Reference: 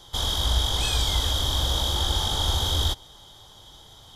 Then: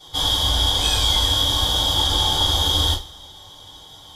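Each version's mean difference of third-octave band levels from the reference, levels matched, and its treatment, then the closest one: 2.5 dB: two-slope reverb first 0.27 s, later 1.6 s, from -26 dB, DRR -10 dB; gain -5.5 dB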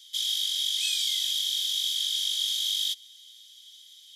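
16.5 dB: steep high-pass 2300 Hz 36 dB/oct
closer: first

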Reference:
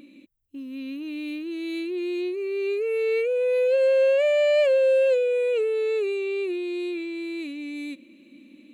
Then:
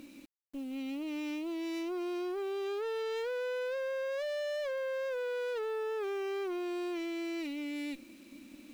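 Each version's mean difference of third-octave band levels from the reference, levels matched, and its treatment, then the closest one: 7.5 dB: compressor 16:1, threshold -24 dBFS, peak gain reduction 8 dB; tube stage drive 34 dB, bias 0.55; bit-crush 10-bit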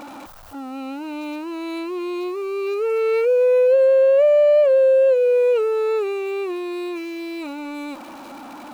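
4.5 dB: zero-crossing step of -38 dBFS; band shelf 880 Hz +14.5 dB; compressor 6:1, threshold -13 dBFS, peak gain reduction 9.5 dB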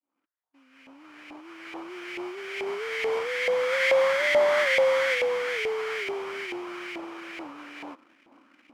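10.5 dB: opening faded in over 2.52 s; sample-rate reducer 2700 Hz, jitter 20%; LFO band-pass saw up 2.3 Hz 770–2200 Hz; gain +8 dB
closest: second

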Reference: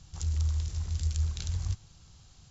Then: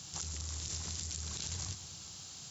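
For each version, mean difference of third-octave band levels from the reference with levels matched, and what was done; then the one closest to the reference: 8.0 dB: high shelf 4200 Hz +12 dB; limiter -29.5 dBFS, peak gain reduction 17.5 dB; HPF 180 Hz 12 dB/oct; split-band echo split 810 Hz, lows 0.222 s, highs 0.12 s, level -14.5 dB; gain +6.5 dB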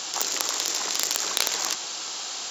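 16.0 dB: tracing distortion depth 0.068 ms; Bessel high-pass 520 Hz, order 6; maximiser +21.5 dB; fast leveller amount 50%; gain -3 dB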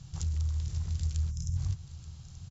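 3.5 dB: compressor 2:1, threshold -35 dBFS, peak gain reduction 6 dB; spectral gain 1.31–1.56, 210–5000 Hz -19 dB; bell 130 Hz +12 dB 0.82 oct; echo 0.881 s -15 dB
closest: third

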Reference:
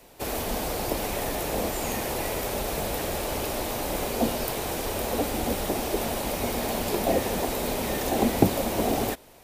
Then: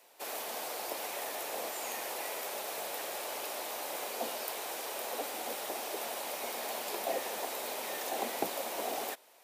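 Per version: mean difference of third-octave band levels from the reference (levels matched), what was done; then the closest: 7.0 dB: HPF 600 Hz 12 dB/oct; gain -6.5 dB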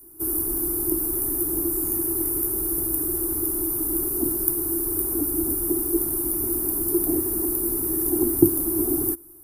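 14.5 dB: EQ curve 140 Hz 0 dB, 220 Hz -12 dB, 340 Hz +15 dB, 510 Hz -22 dB, 1300 Hz -6 dB, 1900 Hz -19 dB, 3300 Hz -28 dB, 4800 Hz -12 dB, 7200 Hz -9 dB, 10000 Hz +15 dB; gain -2 dB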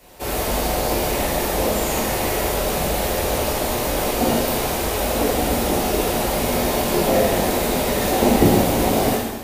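2.0 dB: plate-style reverb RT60 1.3 s, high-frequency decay 0.95×, DRR -6 dB; gain +1 dB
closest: third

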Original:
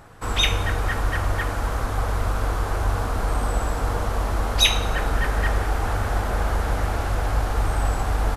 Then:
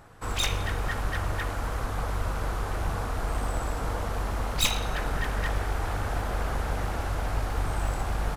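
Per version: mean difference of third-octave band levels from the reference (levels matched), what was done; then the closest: 2.0 dB: one-sided fold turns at -20 dBFS; gain -5 dB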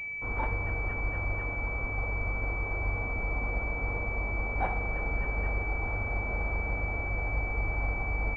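11.0 dB: pulse-width modulation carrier 2300 Hz; gain -9 dB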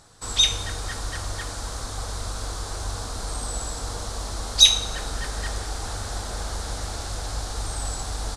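6.5 dB: band shelf 5900 Hz +16 dB; gain -8.5 dB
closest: first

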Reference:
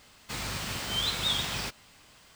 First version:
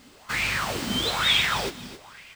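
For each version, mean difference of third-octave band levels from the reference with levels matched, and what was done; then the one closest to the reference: 4.5 dB: on a send: feedback echo 0.265 s, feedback 22%, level -12 dB; on the sum: LFO bell 1.1 Hz 230–2500 Hz +17 dB; gain +2 dB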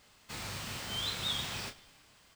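1.0 dB: doubler 30 ms -8 dB; frequency-shifting echo 0.107 s, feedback 63%, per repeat -40 Hz, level -21 dB; gain -6.5 dB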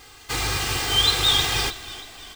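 3.0 dB: comb 2.5 ms, depth 87%; frequency-shifting echo 0.316 s, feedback 52%, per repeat -33 Hz, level -16 dB; gain +7.5 dB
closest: second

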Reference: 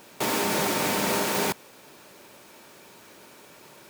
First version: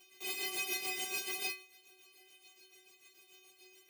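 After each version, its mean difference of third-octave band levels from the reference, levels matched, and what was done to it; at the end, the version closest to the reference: 9.5 dB: resonant high shelf 1900 Hz +7 dB, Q 3; tremolo 6.9 Hz, depth 64%; metallic resonator 370 Hz, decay 0.4 s, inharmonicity 0.008; gain +2 dB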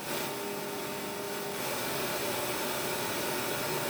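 16.0 dB: notch 6900 Hz, Q 13; negative-ratio compressor -40 dBFS, ratio -1; non-linear reverb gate 0.12 s rising, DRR -5.5 dB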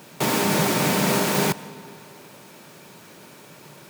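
2.5 dB: HPF 72 Hz; bell 150 Hz +10.5 dB 0.86 oct; digital reverb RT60 2.5 s, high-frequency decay 0.65×, pre-delay 75 ms, DRR 17.5 dB; gain +3 dB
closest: third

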